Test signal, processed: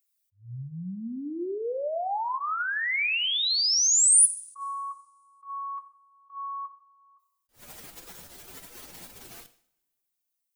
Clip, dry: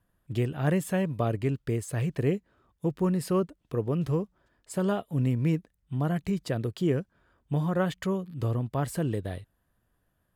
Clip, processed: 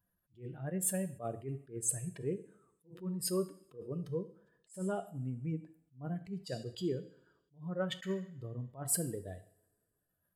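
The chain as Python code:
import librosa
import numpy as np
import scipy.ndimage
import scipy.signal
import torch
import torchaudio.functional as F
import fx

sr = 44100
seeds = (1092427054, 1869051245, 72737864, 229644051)

y = fx.spec_expand(x, sr, power=1.8)
y = fx.dynamic_eq(y, sr, hz=2300.0, q=1.9, threshold_db=-51.0, ratio=4.0, max_db=6)
y = fx.rider(y, sr, range_db=5, speed_s=0.5)
y = fx.riaa(y, sr, side='recording')
y = fx.notch(y, sr, hz=1100.0, q=24.0)
y = fx.rev_double_slope(y, sr, seeds[0], early_s=0.57, late_s=2.1, knee_db=-26, drr_db=10.0)
y = fx.attack_slew(y, sr, db_per_s=220.0)
y = y * 10.0 ** (-2.5 / 20.0)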